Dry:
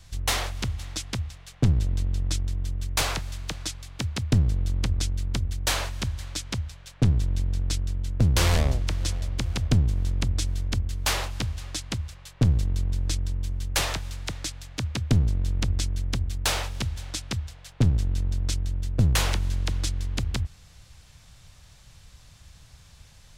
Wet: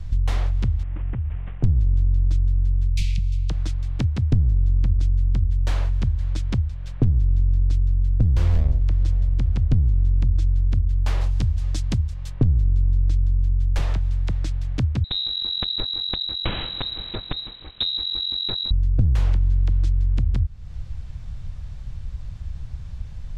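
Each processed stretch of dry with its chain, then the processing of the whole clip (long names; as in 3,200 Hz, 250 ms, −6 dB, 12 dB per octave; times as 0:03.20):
0:00.83–0:01.64: variable-slope delta modulation 16 kbit/s + downward compressor 5 to 1, threshold −38 dBFS
0:02.90–0:03.50: Chebyshev band-stop filter 200–2,300 Hz, order 4 + parametric band 4,800 Hz +4.5 dB 2.7 octaves
0:11.21–0:12.30: bass and treble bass +1 dB, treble +9 dB + notch filter 1,400 Hz, Q 21
0:15.04–0:18.71: repeating echo 155 ms, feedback 49%, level −19 dB + voice inversion scrambler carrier 3,900 Hz
whole clip: RIAA equalisation playback; downward compressor 2.5 to 1, threshold −26 dBFS; level +3.5 dB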